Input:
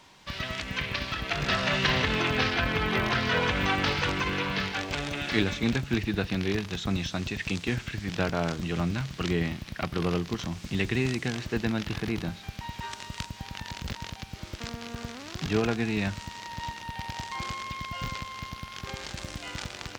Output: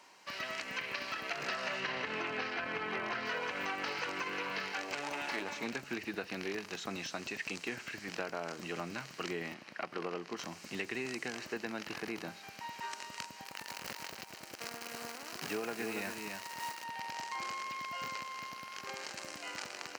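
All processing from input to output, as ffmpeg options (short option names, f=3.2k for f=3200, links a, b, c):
-filter_complex "[0:a]asettb=1/sr,asplit=3[a][b][c];[a]atrim=end=1.804[d];[b]atrim=start=1.8:end=3.26,asetpts=PTS-STARTPTS,afade=t=in:d=0.004:c=qsin,afade=t=out:st=1.456:d=0.004:c=qsin,lowpass=10k,bass=f=250:g=3,treble=f=4k:g=-5[e];[c]atrim=start=3.256[f];[d][e]acrossfade=d=0.004:c1=hsin:c2=qsin[g];[g][f]acrossfade=d=0.004:c1=qsin:c2=hsin,asettb=1/sr,asplit=3[h][i][j];[h]atrim=end=5.034[k];[i]atrim=start=5.03:end=5.66,asetpts=PTS-STARTPTS,afade=t=in:d=0.004:c=qsin,afade=t=out:st=0.626:d=0.004:c=qsin,equalizer=f=910:t=o:w=0.33:g=12.5,aeval=exprs='clip(val(0),-1,0.0562)':c=same[l];[j]atrim=start=5.656[m];[k][l]acrossfade=d=0.004:c1=hsin:c2=qsin[n];[n][m]acrossfade=d=0.004:c1=qsin:c2=hsin,asettb=1/sr,asplit=3[o][p][q];[o]atrim=end=9.544[r];[p]atrim=start=9.54:end=10.37,asetpts=PTS-STARTPTS,afade=t=in:d=0.004:c=qsin,afade=t=out:st=0.826:d=0.004:c=qsin,highpass=f=180:p=1,aemphasis=mode=reproduction:type=50fm[s];[q]atrim=start=10.366[t];[r][s]acrossfade=d=0.004:c1=hsin:c2=qsin[u];[u][t]acrossfade=d=0.004:c1=qsin:c2=hsin,asettb=1/sr,asplit=3[v][w][x];[v]atrim=end=13.444[y];[w]atrim=start=13.44:end=16.84,asetpts=PTS-STARTPTS,afade=t=in:d=0.004:c=qsin,afade=t=out:st=3.396:d=0.004:c=qsin,acrusher=bits=7:dc=4:mix=0:aa=0.000001,aecho=1:1:282:0.422,atrim=end_sample=149940[z];[x]atrim=start=16.836[aa];[y][z]acrossfade=d=0.004:c1=hsin:c2=qsin[ab];[ab][aa]acrossfade=d=0.004:c1=qsin:c2=hsin,highpass=360,equalizer=f=3.5k:w=7.1:g=-13,acompressor=threshold=-31dB:ratio=6,volume=-3dB"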